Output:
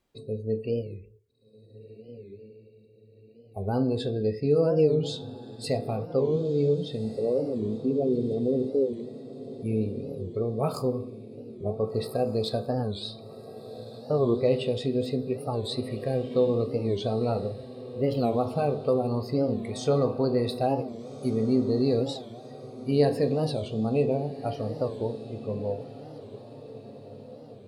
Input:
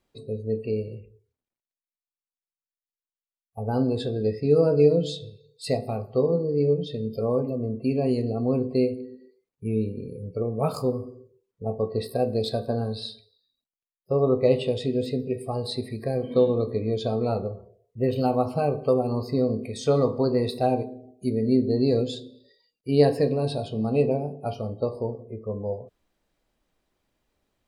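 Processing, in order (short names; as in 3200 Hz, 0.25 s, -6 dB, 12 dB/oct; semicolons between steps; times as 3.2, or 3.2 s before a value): 7.05–8.94 formant sharpening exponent 2; in parallel at -2.5 dB: limiter -17 dBFS, peak gain reduction 10.5 dB; on the sum: diffused feedback echo 1.536 s, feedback 49%, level -14.5 dB; record warp 45 rpm, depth 160 cents; gain -6 dB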